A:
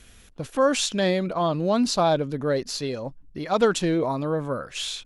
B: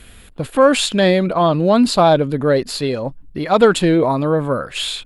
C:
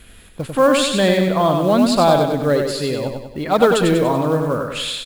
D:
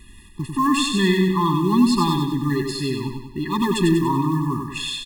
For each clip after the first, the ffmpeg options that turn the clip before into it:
-af "equalizer=f=5900:w=3.7:g=-14.5,acontrast=39,volume=1.5"
-filter_complex "[0:a]acrusher=bits=7:mode=log:mix=0:aa=0.000001,asplit=2[s0][s1];[s1]aecho=0:1:96|192|288|384|480|576:0.562|0.281|0.141|0.0703|0.0351|0.0176[s2];[s0][s2]amix=inputs=2:normalize=0,volume=0.75"
-af "afftfilt=real='re*eq(mod(floor(b*sr/1024/410),2),0)':imag='im*eq(mod(floor(b*sr/1024/410),2),0)':win_size=1024:overlap=0.75"

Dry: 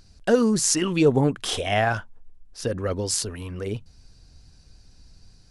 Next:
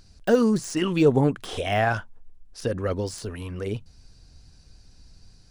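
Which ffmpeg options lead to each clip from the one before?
-af "deesser=0.8"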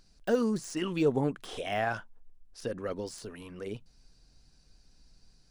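-af "equalizer=f=84:t=o:w=0.7:g=-14.5,volume=0.422"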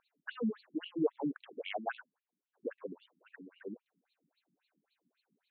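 -af "afftfilt=real='re*between(b*sr/1024,220*pow(3200/220,0.5+0.5*sin(2*PI*3.7*pts/sr))/1.41,220*pow(3200/220,0.5+0.5*sin(2*PI*3.7*pts/sr))*1.41)':imag='im*between(b*sr/1024,220*pow(3200/220,0.5+0.5*sin(2*PI*3.7*pts/sr))/1.41,220*pow(3200/220,0.5+0.5*sin(2*PI*3.7*pts/sr))*1.41)':win_size=1024:overlap=0.75,volume=0.891"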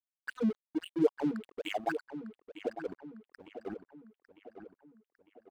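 -filter_complex "[0:a]aeval=exprs='sgn(val(0))*max(abs(val(0))-0.00335,0)':c=same,asplit=2[s0][s1];[s1]adelay=902,lowpass=f=3500:p=1,volume=0.282,asplit=2[s2][s3];[s3]adelay=902,lowpass=f=3500:p=1,volume=0.5,asplit=2[s4][s5];[s5]adelay=902,lowpass=f=3500:p=1,volume=0.5,asplit=2[s6][s7];[s7]adelay=902,lowpass=f=3500:p=1,volume=0.5,asplit=2[s8][s9];[s9]adelay=902,lowpass=f=3500:p=1,volume=0.5[s10];[s0][s2][s4][s6][s8][s10]amix=inputs=6:normalize=0,volume=1.78"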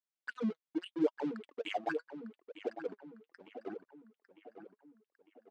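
-af "flanger=delay=1.6:depth=5.3:regen=49:speed=0.78:shape=triangular,highpass=190,lowpass=6100,volume=1.26"

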